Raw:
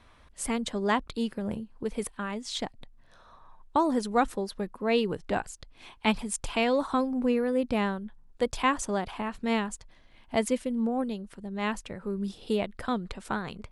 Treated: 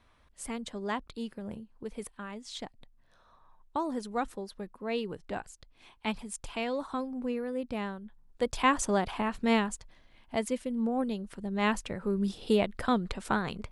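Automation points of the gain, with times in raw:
7.97 s -7.5 dB
8.82 s +2 dB
9.49 s +2 dB
10.46 s -5 dB
11.43 s +2.5 dB

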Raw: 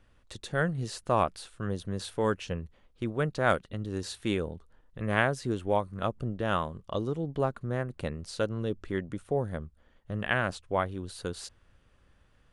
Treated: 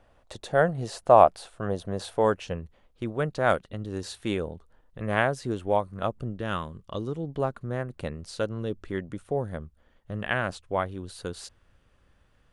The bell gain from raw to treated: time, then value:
bell 690 Hz 1.1 oct
2.06 s +14 dB
2.62 s +4 dB
6.04 s +4 dB
6.63 s -7.5 dB
7.38 s +1.5 dB

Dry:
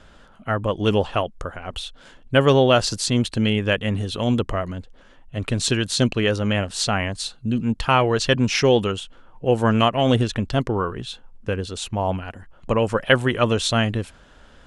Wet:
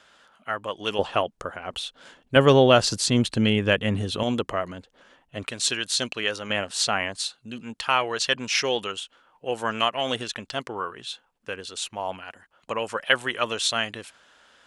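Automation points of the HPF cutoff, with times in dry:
HPF 6 dB/oct
1300 Hz
from 0.99 s 300 Hz
from 2.36 s 100 Hz
from 4.23 s 400 Hz
from 5.47 s 1300 Hz
from 6.5 s 600 Hz
from 7.25 s 1300 Hz

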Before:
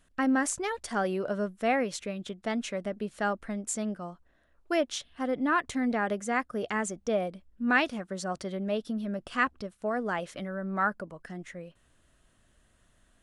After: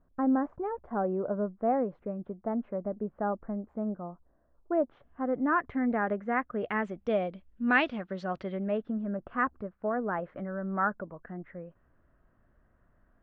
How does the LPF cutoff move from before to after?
LPF 24 dB/oct
4.76 s 1100 Hz
5.73 s 1900 Hz
6.28 s 1900 Hz
7.16 s 3400 Hz
8.31 s 3400 Hz
9.05 s 1600 Hz

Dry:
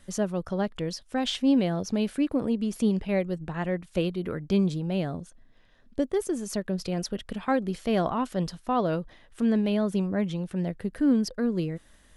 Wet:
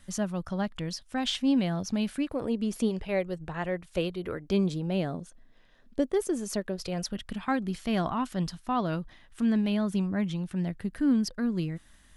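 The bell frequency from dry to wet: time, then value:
bell -9.5 dB 0.87 oct
2.19 s 440 Hz
2.75 s 72 Hz
2.93 s 230 Hz
4.2 s 230 Hz
4.85 s 81 Hz
6.46 s 81 Hz
7.18 s 490 Hz

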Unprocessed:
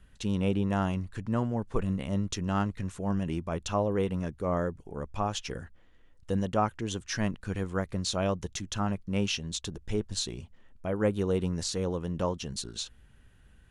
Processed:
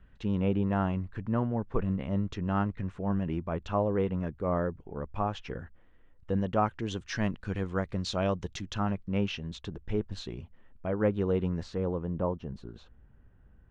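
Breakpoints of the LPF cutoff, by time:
6.32 s 2200 Hz
6.83 s 4200 Hz
8.62 s 4200 Hz
9.26 s 2400 Hz
11.48 s 2400 Hz
12.15 s 1100 Hz

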